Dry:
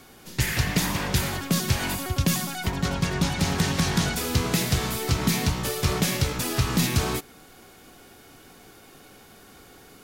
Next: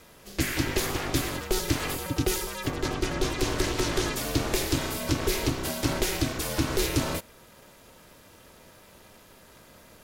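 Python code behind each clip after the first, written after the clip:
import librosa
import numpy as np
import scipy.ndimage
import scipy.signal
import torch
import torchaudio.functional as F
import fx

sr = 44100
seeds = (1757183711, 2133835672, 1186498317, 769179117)

y = x * np.sin(2.0 * np.pi * 200.0 * np.arange(len(x)) / sr)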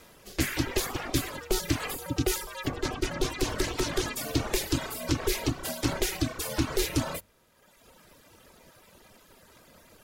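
y = fx.hum_notches(x, sr, base_hz=50, count=4)
y = fx.dereverb_blind(y, sr, rt60_s=1.3)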